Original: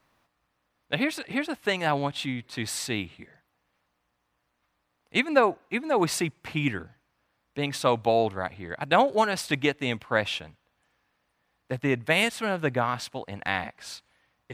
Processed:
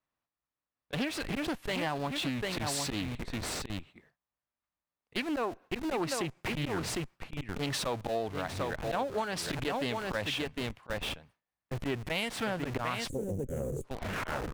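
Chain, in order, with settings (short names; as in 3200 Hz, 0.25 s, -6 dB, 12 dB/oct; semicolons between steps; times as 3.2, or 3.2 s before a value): tape stop at the end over 1.23 s; on a send: echo 0.755 s -9.5 dB; on the sum: auto swell 0.107 s; gate with hold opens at -46 dBFS; in parallel at -6.5 dB: Schmitt trigger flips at -39.5 dBFS; on the sum: spectral gain 13.09–13.84, 580–6400 Hz -27 dB; compressor 6:1, threshold -30 dBFS, peak gain reduction 13 dB; Doppler distortion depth 0.26 ms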